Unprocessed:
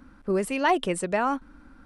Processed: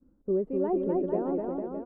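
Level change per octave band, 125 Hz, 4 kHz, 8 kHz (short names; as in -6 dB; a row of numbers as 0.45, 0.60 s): -2.5 dB, under -35 dB, under -40 dB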